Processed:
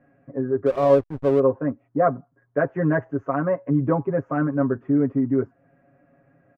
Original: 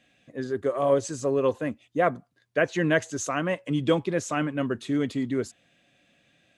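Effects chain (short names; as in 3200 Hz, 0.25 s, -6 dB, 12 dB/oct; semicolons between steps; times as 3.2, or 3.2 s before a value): inverse Chebyshev low-pass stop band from 3600 Hz, stop band 50 dB; comb 7.3 ms, depth 88%; in parallel at 0 dB: compressor 10:1, threshold -35 dBFS, peak gain reduction 23 dB; 0.66–1.4 on the sum: backlash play -26.5 dBFS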